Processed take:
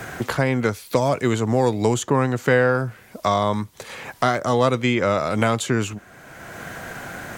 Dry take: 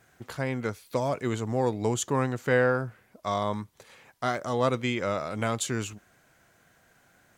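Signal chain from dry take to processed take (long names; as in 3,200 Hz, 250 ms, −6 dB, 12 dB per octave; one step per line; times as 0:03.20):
multiband upward and downward compressor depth 70%
level +8 dB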